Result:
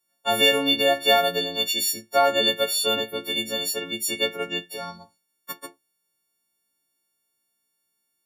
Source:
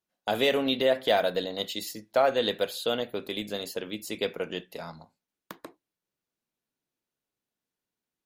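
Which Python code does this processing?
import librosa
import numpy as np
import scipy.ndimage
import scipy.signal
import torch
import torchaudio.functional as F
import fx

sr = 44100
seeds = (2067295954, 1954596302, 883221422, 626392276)

y = fx.freq_snap(x, sr, grid_st=4)
y = y * librosa.db_to_amplitude(2.0)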